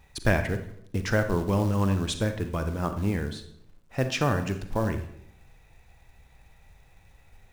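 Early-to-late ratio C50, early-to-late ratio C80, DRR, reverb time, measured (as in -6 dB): 9.5 dB, 13.0 dB, 8.0 dB, 0.70 s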